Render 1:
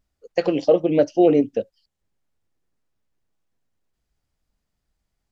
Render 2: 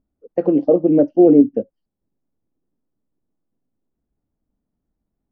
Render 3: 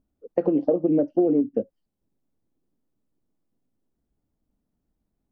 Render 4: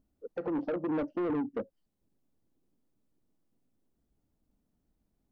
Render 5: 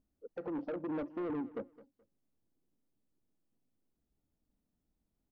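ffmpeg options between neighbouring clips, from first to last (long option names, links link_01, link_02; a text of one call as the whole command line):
ffmpeg -i in.wav -af "lowpass=1000,equalizer=frequency=260:width_type=o:width=1.3:gain=12,volume=-2.5dB" out.wav
ffmpeg -i in.wav -af "acompressor=threshold=-17dB:ratio=12" out.wav
ffmpeg -i in.wav -af "alimiter=limit=-17dB:level=0:latency=1:release=251,asoftclip=type=tanh:threshold=-28dB" out.wav
ffmpeg -i in.wav -af "aecho=1:1:213|426:0.119|0.0285,volume=-6dB" out.wav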